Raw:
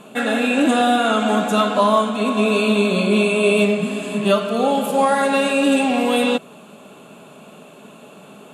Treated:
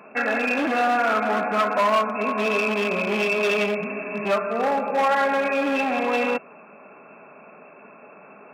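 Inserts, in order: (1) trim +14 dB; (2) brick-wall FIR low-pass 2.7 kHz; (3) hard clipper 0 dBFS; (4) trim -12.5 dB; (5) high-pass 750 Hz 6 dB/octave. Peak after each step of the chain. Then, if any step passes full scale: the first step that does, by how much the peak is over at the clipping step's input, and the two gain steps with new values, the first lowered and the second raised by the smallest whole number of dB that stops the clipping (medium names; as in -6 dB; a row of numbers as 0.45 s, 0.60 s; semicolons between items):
+8.5 dBFS, +8.5 dBFS, 0.0 dBFS, -12.5 dBFS, -9.5 dBFS; step 1, 8.5 dB; step 1 +5 dB, step 4 -3.5 dB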